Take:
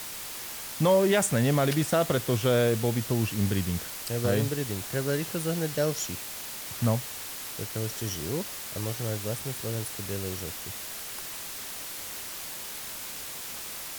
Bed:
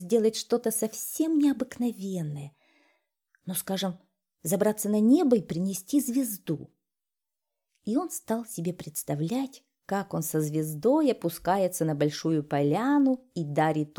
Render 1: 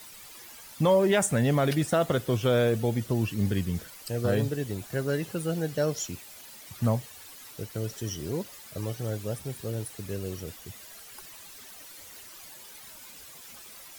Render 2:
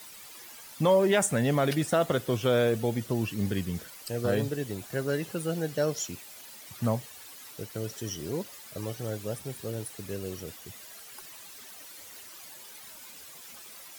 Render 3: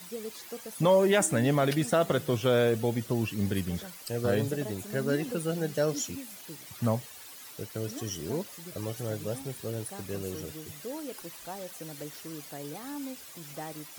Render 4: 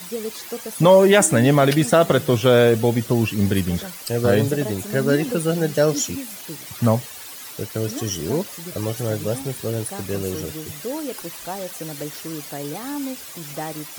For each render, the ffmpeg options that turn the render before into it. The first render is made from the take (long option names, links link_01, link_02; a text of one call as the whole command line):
ffmpeg -i in.wav -af "afftdn=noise_reduction=12:noise_floor=-39" out.wav
ffmpeg -i in.wav -af "lowshelf=frequency=87:gain=-11" out.wav
ffmpeg -i in.wav -i bed.wav -filter_complex "[1:a]volume=-16dB[link_01];[0:a][link_01]amix=inputs=2:normalize=0" out.wav
ffmpeg -i in.wav -af "volume=10dB" out.wav